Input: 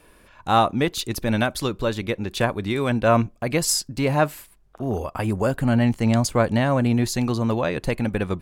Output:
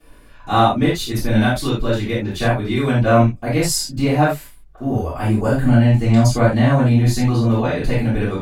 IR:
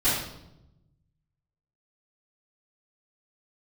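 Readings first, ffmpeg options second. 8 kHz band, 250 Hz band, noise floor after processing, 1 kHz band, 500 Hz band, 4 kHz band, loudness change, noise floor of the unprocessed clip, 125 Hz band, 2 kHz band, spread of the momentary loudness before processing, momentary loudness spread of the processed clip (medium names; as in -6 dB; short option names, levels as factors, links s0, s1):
+1.0 dB, +5.5 dB, -43 dBFS, +3.5 dB, +3.0 dB, +2.5 dB, +5.0 dB, -54 dBFS, +8.5 dB, +3.5 dB, 7 LU, 7 LU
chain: -filter_complex "[1:a]atrim=start_sample=2205,atrim=end_sample=4410[s0];[0:a][s0]afir=irnorm=-1:irlink=0,volume=0.316"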